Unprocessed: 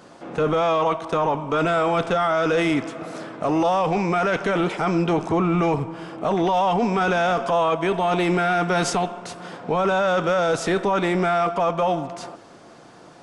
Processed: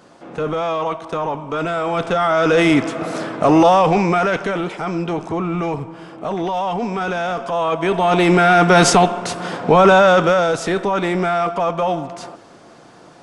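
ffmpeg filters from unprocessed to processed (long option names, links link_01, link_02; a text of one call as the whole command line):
ffmpeg -i in.wav -af "volume=21dB,afade=type=in:start_time=1.82:duration=1.22:silence=0.316228,afade=type=out:start_time=3.58:duration=1.05:silence=0.298538,afade=type=in:start_time=7.5:duration=1.36:silence=0.251189,afade=type=out:start_time=9.91:duration=0.63:silence=0.375837" out.wav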